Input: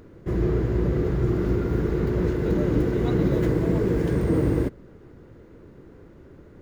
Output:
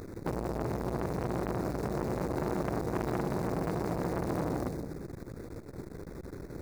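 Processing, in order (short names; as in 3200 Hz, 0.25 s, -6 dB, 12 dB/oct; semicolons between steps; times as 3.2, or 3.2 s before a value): dynamic EQ 170 Hz, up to +5 dB, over -36 dBFS, Q 0.79; compressor 16:1, threshold -31 dBFS, peak gain reduction 18.5 dB; short-mantissa float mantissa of 2-bit; Butterworth band-stop 3000 Hz, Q 2.2; split-band echo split 390 Hz, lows 0.166 s, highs 0.124 s, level -6 dB; core saturation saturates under 920 Hz; gain +6.5 dB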